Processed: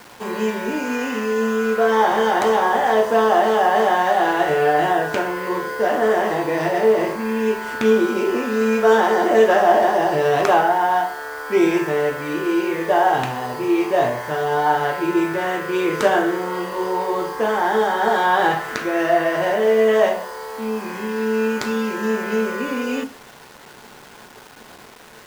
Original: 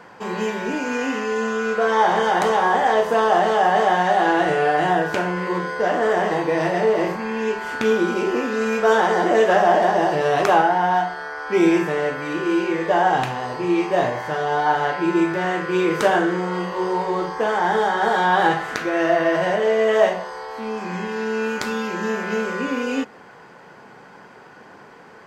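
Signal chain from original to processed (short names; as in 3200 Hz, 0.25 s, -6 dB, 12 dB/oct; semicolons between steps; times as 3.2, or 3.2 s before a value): on a send at -12.5 dB: HPF 96 Hz 12 dB/oct + reverb RT60 0.40 s, pre-delay 3 ms; on the sum: bit-crush 7-bit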